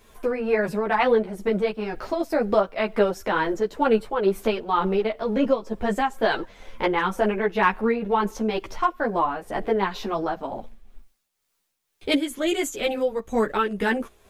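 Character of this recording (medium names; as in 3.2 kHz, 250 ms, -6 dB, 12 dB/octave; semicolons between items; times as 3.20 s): a quantiser's noise floor 12-bit, dither triangular; tremolo triangle 2.1 Hz, depth 55%; a shimmering, thickened sound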